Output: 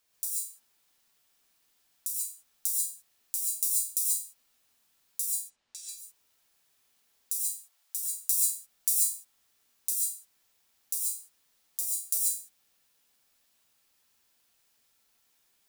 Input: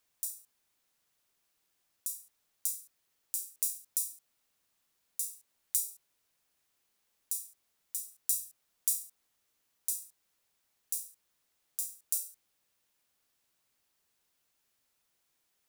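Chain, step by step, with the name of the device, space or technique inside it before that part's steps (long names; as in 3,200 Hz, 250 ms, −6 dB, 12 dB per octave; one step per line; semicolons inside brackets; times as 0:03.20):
0:07.45–0:08.15: high-pass filter 380 Hz → 950 Hz 24 dB per octave
presence and air boost (parametric band 4,500 Hz +2.5 dB 1.5 octaves; high-shelf EQ 12,000 Hz +3 dB)
0:05.35–0:05.89: high-frequency loss of the air 130 metres
reverb whose tail is shaped and stops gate 160 ms rising, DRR −3.5 dB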